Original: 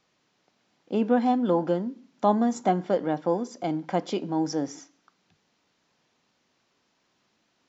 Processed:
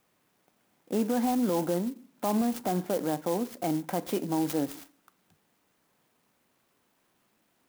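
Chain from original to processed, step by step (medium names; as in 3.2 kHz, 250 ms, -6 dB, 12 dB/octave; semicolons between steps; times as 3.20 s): peak limiter -19.5 dBFS, peak gain reduction 9 dB; sampling jitter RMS 0.06 ms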